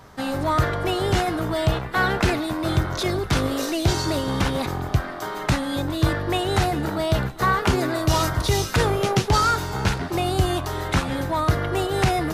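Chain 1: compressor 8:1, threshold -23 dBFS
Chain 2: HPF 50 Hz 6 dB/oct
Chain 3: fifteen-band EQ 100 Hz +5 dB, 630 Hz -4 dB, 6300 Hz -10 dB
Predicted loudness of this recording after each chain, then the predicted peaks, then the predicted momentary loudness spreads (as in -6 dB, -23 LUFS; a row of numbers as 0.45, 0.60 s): -28.0, -23.0, -22.5 LUFS; -11.0, -7.5, -5.0 dBFS; 2, 4, 4 LU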